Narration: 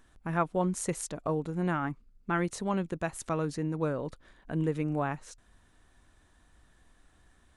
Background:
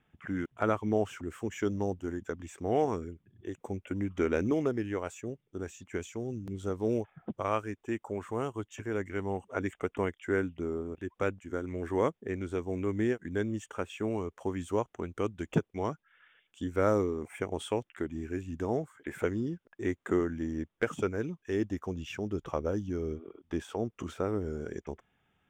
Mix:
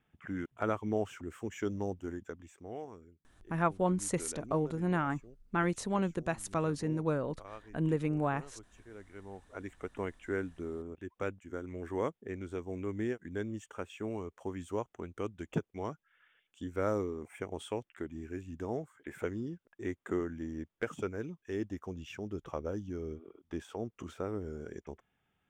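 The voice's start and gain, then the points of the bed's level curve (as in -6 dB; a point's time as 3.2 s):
3.25 s, -1.0 dB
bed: 2.13 s -4 dB
2.9 s -17.5 dB
8.92 s -17.5 dB
10.09 s -5.5 dB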